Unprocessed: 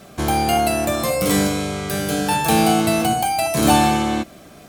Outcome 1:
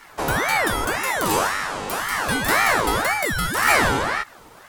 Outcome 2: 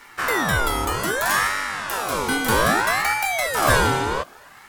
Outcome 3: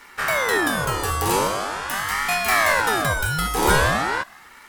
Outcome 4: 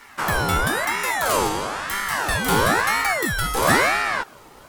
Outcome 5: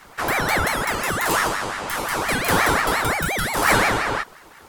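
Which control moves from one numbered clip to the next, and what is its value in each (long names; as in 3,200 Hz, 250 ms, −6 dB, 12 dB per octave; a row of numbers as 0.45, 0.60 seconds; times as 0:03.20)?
ring modulator whose carrier an LFO sweeps, at: 1.9, 0.63, 0.43, 1, 5.7 Hertz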